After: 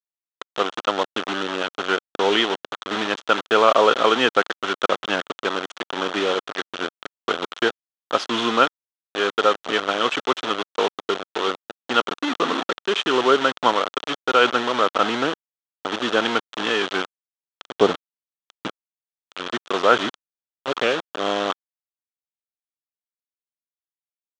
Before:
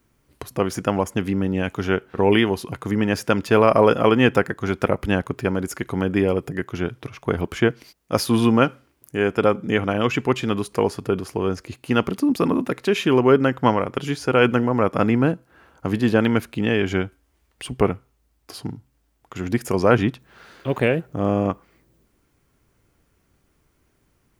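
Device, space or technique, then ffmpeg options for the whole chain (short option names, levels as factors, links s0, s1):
hand-held game console: -filter_complex "[0:a]asettb=1/sr,asplit=3[s0][s1][s2];[s0]atrim=end=17.804[s3];[s1]atrim=start=17.8:end=18.68,asetpts=PTS-STARTPTS,afade=t=in:d=0.004:c=qsin,afade=t=out:st=0.876:d=0.004:c=qsin,tiltshelf=f=970:g=9[s4];[s2]atrim=start=18.676[s5];[s3][s4]acrossfade=d=0.004:c1=hsin:c2=qsin[s6];[s6][s5]acrossfade=d=0.004:c1=qsin:c2=hsin,acrusher=bits=3:mix=0:aa=0.000001,highpass=410,equalizer=f=1300:t=q:w=4:g=7,equalizer=f=2200:t=q:w=4:g=-4,equalizer=f=3300:t=q:w=4:g=8,equalizer=f=4900:t=q:w=4:g=-7,lowpass=f=5600:w=0.5412,lowpass=f=5600:w=1.3066"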